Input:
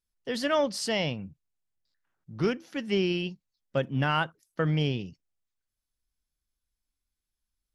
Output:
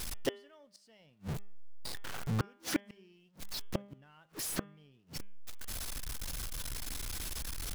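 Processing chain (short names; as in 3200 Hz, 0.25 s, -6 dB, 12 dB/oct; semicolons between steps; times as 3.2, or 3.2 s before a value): zero-crossing step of -38 dBFS; flipped gate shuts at -25 dBFS, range -41 dB; de-hum 201.4 Hz, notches 17; gain +6.5 dB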